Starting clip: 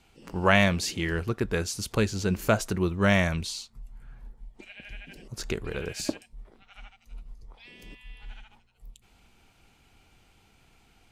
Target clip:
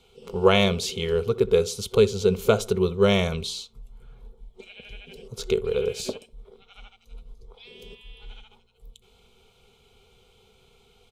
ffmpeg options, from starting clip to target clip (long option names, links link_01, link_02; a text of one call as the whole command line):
ffmpeg -i in.wav -filter_complex "[0:a]superequalizer=6b=0.251:7b=3.98:11b=0.282:13b=2.24,asplit=2[link_01][link_02];[link_02]adelay=65,lowpass=frequency=1200:poles=1,volume=-17.5dB,asplit=2[link_03][link_04];[link_04]adelay=65,lowpass=frequency=1200:poles=1,volume=0.4,asplit=2[link_05][link_06];[link_06]adelay=65,lowpass=frequency=1200:poles=1,volume=0.4[link_07];[link_01][link_03][link_05][link_07]amix=inputs=4:normalize=0" out.wav